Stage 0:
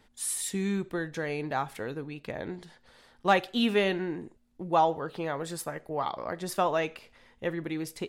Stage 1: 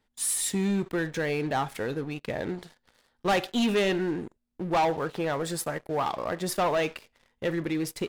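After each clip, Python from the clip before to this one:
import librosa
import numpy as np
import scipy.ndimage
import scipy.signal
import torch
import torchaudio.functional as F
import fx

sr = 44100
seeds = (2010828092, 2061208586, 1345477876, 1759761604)

y = fx.leveller(x, sr, passes=3)
y = y * 10.0 ** (-6.0 / 20.0)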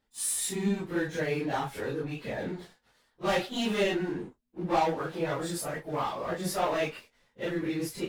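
y = fx.phase_scramble(x, sr, seeds[0], window_ms=100)
y = y * 10.0 ** (-2.5 / 20.0)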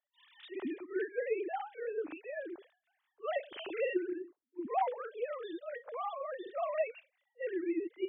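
y = fx.sine_speech(x, sr)
y = y * 10.0 ** (-6.5 / 20.0)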